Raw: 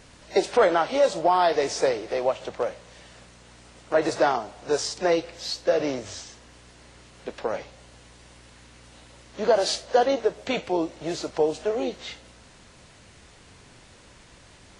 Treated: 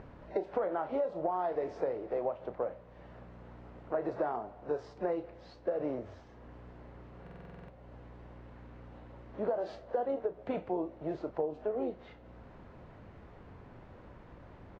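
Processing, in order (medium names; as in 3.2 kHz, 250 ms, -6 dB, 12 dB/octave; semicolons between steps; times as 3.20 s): upward compressor, threshold -36 dBFS; low-pass 1.1 kHz 12 dB/octave; doubling 33 ms -13 dB; compression 12:1, threshold -23 dBFS, peak gain reduction 10 dB; buffer glitch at 7.22 s, samples 2048, times 9; trim -5.5 dB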